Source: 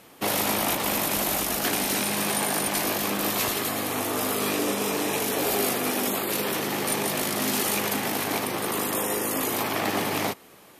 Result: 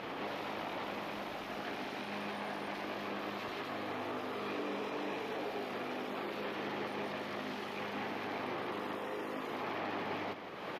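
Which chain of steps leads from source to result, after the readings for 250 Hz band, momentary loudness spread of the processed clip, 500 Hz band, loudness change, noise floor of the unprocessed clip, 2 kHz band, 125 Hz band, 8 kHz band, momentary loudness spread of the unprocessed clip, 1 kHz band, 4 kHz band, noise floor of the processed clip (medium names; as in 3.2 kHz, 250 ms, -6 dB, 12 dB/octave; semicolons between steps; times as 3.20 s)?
-12.5 dB, 2 LU, -11.0 dB, -14.5 dB, -51 dBFS, -12.0 dB, -14.5 dB, -34.5 dB, 3 LU, -10.5 dB, -16.5 dB, -43 dBFS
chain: bass shelf 200 Hz -10 dB; upward compressor, threshold -29 dBFS; peak limiter -31 dBFS, peak gain reduction 16.5 dB; distance through air 300 m; delay 166 ms -8.5 dB; trim +3 dB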